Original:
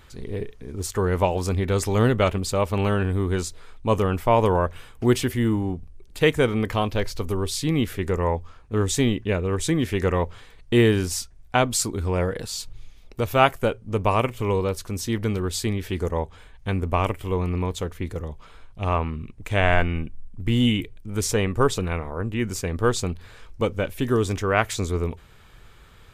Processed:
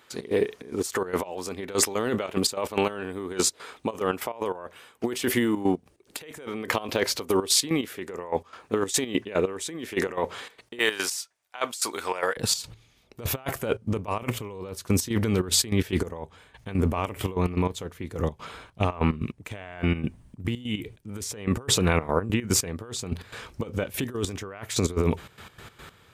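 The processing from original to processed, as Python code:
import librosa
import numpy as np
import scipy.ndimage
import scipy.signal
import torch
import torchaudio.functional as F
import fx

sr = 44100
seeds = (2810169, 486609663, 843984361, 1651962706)

y = fx.highpass(x, sr, hz=fx.steps((0.0, 290.0), (10.79, 840.0), (12.37, 110.0)), slope=12)
y = fx.over_compress(y, sr, threshold_db=-29.0, ratio=-1.0)
y = fx.step_gate(y, sr, bpm=146, pattern='.x.xxx.x.x.x....', floor_db=-12.0, edge_ms=4.5)
y = y * librosa.db_to_amplitude(5.5)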